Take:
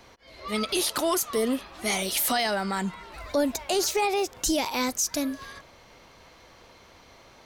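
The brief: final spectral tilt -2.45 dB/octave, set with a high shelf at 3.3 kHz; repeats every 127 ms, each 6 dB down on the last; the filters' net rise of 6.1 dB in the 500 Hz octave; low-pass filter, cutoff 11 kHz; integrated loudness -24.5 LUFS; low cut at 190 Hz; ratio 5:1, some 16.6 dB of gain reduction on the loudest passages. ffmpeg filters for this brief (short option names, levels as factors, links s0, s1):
-af "highpass=190,lowpass=11000,equalizer=f=500:t=o:g=8,highshelf=f=3300:g=7,acompressor=threshold=0.0178:ratio=5,aecho=1:1:127|254|381|508|635|762:0.501|0.251|0.125|0.0626|0.0313|0.0157,volume=3.55"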